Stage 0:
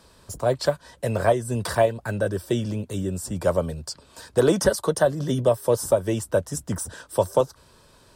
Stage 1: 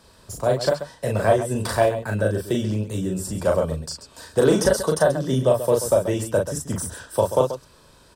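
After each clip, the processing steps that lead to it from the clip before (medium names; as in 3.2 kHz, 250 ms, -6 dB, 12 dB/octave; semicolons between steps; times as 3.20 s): loudspeakers at several distances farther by 13 m -3 dB, 46 m -11 dB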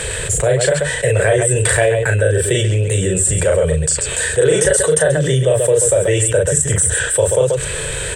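FFT filter 150 Hz 0 dB, 230 Hz -23 dB, 460 Hz +4 dB, 680 Hz -7 dB, 1.1 kHz -13 dB, 1.8 kHz +7 dB, 3.3 kHz +2 dB, 5.1 kHz -14 dB, 8.1 kHz +11 dB, 12 kHz -13 dB; level flattener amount 70%; trim +2 dB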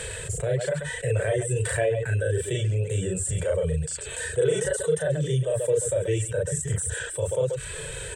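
reverb removal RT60 0.55 s; harmonic-percussive split percussive -12 dB; trim -7.5 dB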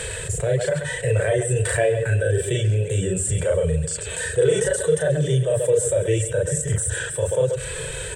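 reverberation RT60 2.9 s, pre-delay 44 ms, DRR 15 dB; trim +4.5 dB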